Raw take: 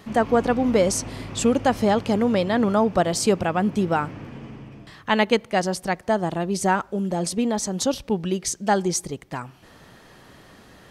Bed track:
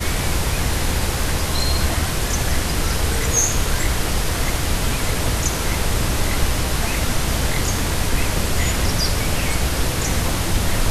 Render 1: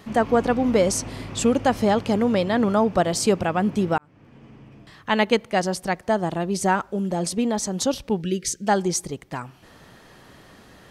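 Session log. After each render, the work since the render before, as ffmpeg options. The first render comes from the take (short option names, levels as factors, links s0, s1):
-filter_complex "[0:a]asplit=3[s0][s1][s2];[s0]afade=t=out:st=8.21:d=0.02[s3];[s1]asuperstop=centerf=880:order=8:qfactor=0.99,afade=t=in:st=8.21:d=0.02,afade=t=out:st=8.65:d=0.02[s4];[s2]afade=t=in:st=8.65:d=0.02[s5];[s3][s4][s5]amix=inputs=3:normalize=0,asplit=2[s6][s7];[s6]atrim=end=3.98,asetpts=PTS-STARTPTS,afade=t=out:st=3.976:d=0.004:c=hsin[s8];[s7]atrim=start=3.98,asetpts=PTS-STARTPTS,afade=t=in:d=1.28[s9];[s8][s9]concat=n=2:v=0:a=1"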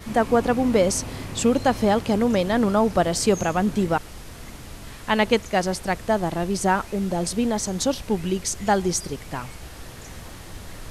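-filter_complex "[1:a]volume=0.106[s0];[0:a][s0]amix=inputs=2:normalize=0"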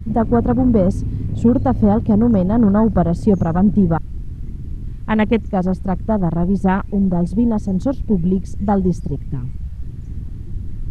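-af "bass=f=250:g=14,treble=f=4000:g=-4,afwtdn=0.0562"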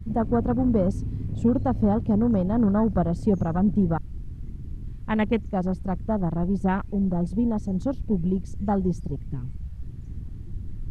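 -af "volume=0.422"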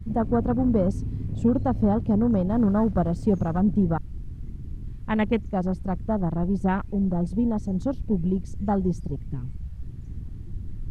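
-filter_complex "[0:a]asettb=1/sr,asplit=3[s0][s1][s2];[s0]atrim=end=2.504[s3];[s1]atrim=start=2.5:end=3.61,asetpts=PTS-STARTPTS,afade=t=in:d=0.004:c=qsin,afade=t=out:st=1.106:d=0.004:c=qsin,aeval=exprs='sgn(val(0))*max(abs(val(0))-0.00178,0)':c=same[s4];[s2]atrim=start=3.606[s5];[s3][s4]acrossfade=d=0.004:c1=hsin:c2=qsin[s6];[s6][s5]acrossfade=d=0.004:c1=qsin:c2=hsin"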